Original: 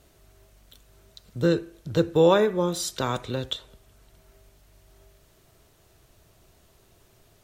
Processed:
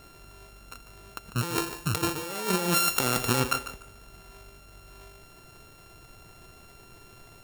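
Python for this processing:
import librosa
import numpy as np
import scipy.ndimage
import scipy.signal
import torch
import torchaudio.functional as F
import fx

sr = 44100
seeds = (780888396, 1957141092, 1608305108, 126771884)

y = np.r_[np.sort(x[:len(x) // 32 * 32].reshape(-1, 32), axis=1).ravel(), x[len(x) // 32 * 32:]]
y = fx.high_shelf(y, sr, hz=4700.0, db=7.5, at=(1.38, 3.4))
y = fx.over_compress(y, sr, threshold_db=-30.0, ratio=-1.0)
y = fx.peak_eq(y, sr, hz=63.0, db=-5.0, octaves=1.7)
y = fx.echo_feedback(y, sr, ms=147, feedback_pct=21, wet_db=-12.0)
y = y * 10.0 ** (2.0 / 20.0)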